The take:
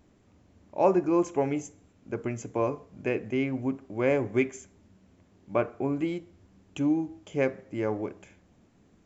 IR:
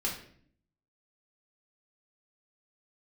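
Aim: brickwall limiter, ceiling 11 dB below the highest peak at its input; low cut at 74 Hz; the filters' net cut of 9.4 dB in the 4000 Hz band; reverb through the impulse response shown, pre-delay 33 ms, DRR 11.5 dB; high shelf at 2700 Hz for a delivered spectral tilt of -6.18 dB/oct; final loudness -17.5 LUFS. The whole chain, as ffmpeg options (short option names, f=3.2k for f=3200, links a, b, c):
-filter_complex "[0:a]highpass=74,highshelf=f=2.7k:g=-7,equalizer=f=4k:t=o:g=-8.5,alimiter=limit=-21.5dB:level=0:latency=1,asplit=2[a][b];[1:a]atrim=start_sample=2205,adelay=33[c];[b][c]afir=irnorm=-1:irlink=0,volume=-16.5dB[d];[a][d]amix=inputs=2:normalize=0,volume=16dB"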